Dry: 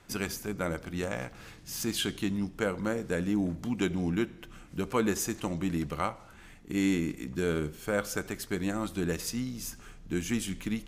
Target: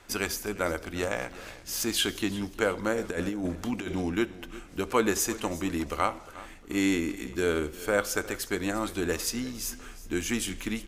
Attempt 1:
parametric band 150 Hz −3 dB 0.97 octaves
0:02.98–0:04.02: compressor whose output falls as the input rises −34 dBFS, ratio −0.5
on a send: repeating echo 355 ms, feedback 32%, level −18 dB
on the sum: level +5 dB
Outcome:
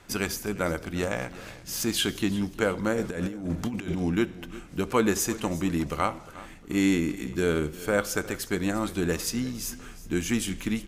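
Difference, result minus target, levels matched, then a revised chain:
125 Hz band +4.5 dB
parametric band 150 Hz −14 dB 0.97 octaves
0:02.98–0:04.02: compressor whose output falls as the input rises −34 dBFS, ratio −0.5
on a send: repeating echo 355 ms, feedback 32%, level −18 dB
on the sum: level +5 dB

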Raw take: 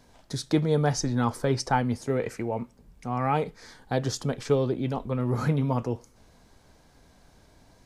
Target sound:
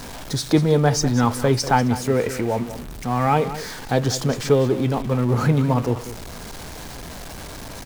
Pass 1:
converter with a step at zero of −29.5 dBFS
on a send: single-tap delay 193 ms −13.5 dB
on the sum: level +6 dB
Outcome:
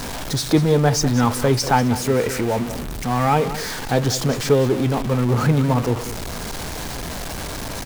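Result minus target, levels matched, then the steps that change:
converter with a step at zero: distortion +6 dB
change: converter with a step at zero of −36.5 dBFS

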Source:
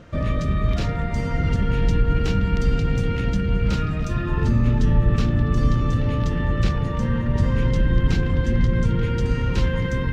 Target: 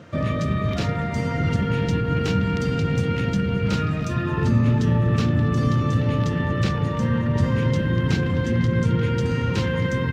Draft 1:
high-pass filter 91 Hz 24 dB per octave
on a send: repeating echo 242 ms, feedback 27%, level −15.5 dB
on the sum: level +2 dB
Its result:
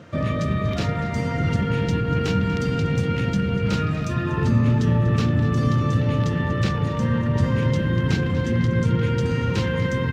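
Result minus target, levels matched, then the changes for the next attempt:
echo-to-direct +8.5 dB
change: repeating echo 242 ms, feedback 27%, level −24 dB

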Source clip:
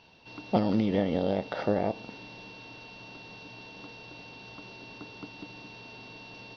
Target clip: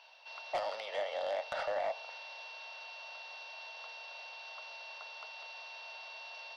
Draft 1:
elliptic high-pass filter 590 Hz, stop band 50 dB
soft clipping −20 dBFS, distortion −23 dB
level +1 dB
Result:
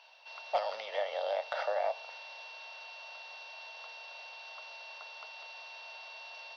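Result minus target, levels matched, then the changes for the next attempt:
soft clipping: distortion −12 dB
change: soft clipping −30 dBFS, distortion −11 dB

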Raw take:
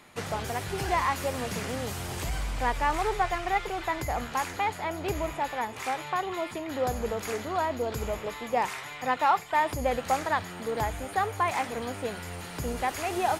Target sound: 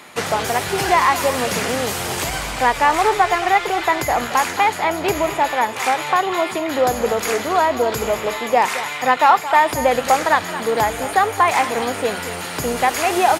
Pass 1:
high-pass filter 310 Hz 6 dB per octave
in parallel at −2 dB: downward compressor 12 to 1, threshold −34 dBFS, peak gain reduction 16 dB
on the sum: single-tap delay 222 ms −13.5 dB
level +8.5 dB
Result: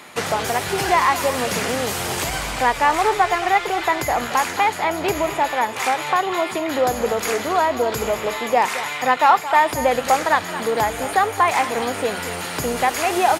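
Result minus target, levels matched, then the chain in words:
downward compressor: peak gain reduction +7 dB
high-pass filter 310 Hz 6 dB per octave
in parallel at −2 dB: downward compressor 12 to 1, threshold −26.5 dBFS, peak gain reduction 9 dB
on the sum: single-tap delay 222 ms −13.5 dB
level +8.5 dB

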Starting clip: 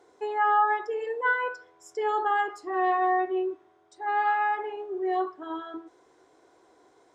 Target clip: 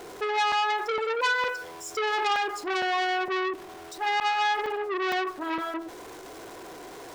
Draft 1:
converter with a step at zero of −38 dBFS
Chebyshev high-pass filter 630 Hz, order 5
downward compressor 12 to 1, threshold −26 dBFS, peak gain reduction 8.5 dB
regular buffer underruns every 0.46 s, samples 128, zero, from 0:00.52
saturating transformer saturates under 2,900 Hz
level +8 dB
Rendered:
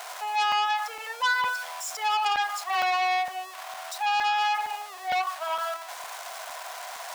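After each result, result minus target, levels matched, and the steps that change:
500 Hz band −8.5 dB; converter with a step at zero: distortion +8 dB
remove: Chebyshev high-pass filter 630 Hz, order 5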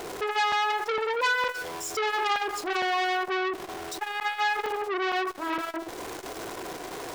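converter with a step at zero: distortion +8 dB
change: converter with a step at zero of −47 dBFS

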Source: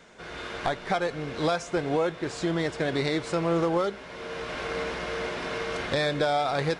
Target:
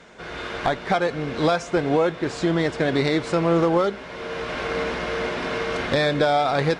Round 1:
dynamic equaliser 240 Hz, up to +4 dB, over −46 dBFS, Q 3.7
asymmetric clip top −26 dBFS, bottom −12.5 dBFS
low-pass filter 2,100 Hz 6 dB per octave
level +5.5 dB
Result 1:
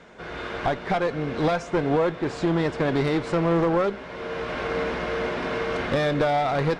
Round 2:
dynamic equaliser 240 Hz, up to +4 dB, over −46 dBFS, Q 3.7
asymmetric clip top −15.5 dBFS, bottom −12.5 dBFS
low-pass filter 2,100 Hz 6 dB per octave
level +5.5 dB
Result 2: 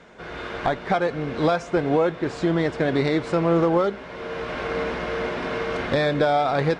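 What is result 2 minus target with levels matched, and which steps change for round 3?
4,000 Hz band −4.0 dB
change: low-pass filter 5,500 Hz 6 dB per octave

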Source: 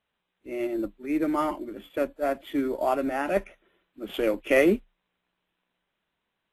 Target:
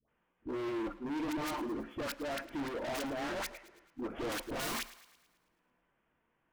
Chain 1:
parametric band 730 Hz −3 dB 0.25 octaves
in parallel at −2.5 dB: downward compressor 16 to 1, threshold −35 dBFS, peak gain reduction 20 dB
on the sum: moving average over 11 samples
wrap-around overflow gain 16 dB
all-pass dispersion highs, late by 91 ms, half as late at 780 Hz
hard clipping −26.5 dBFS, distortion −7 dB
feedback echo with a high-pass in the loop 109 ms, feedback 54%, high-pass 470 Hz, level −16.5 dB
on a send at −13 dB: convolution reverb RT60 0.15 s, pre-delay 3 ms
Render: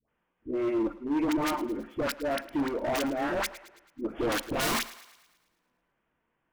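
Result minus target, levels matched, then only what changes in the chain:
hard clipping: distortion −4 dB
change: hard clipping −36.5 dBFS, distortion −3 dB

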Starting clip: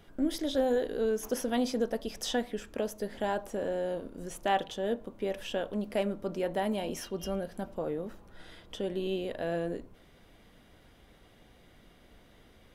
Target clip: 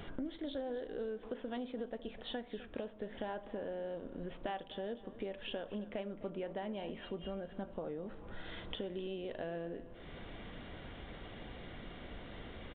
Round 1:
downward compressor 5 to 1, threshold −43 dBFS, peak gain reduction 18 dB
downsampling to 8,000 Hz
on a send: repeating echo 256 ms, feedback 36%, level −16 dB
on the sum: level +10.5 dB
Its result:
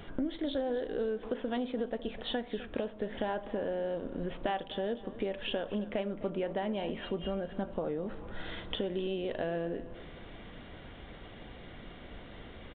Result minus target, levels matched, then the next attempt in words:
downward compressor: peak gain reduction −7 dB
downward compressor 5 to 1, threshold −52 dBFS, peak gain reduction 25 dB
downsampling to 8,000 Hz
on a send: repeating echo 256 ms, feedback 36%, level −16 dB
on the sum: level +10.5 dB

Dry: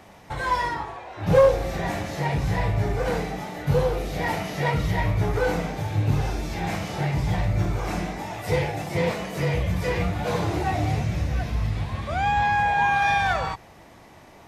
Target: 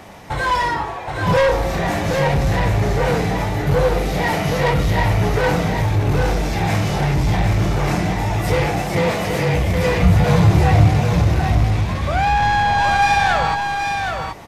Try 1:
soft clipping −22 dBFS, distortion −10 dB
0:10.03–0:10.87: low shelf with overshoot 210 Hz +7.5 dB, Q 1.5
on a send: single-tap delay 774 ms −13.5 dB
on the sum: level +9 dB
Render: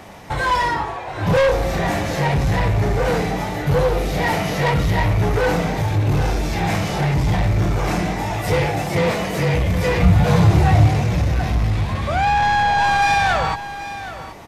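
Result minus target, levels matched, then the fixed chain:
echo-to-direct −8.5 dB
soft clipping −22 dBFS, distortion −10 dB
0:10.03–0:10.87: low shelf with overshoot 210 Hz +7.5 dB, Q 1.5
on a send: single-tap delay 774 ms −5 dB
on the sum: level +9 dB

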